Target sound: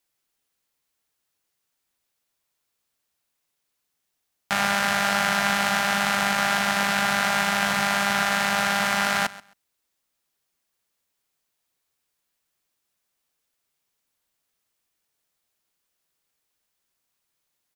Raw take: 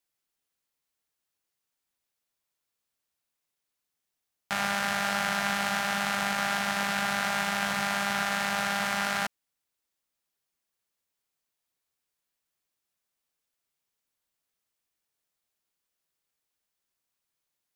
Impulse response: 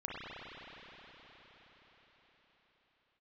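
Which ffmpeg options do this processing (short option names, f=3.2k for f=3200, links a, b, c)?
-af "aecho=1:1:133|266:0.112|0.0202,volume=6dB"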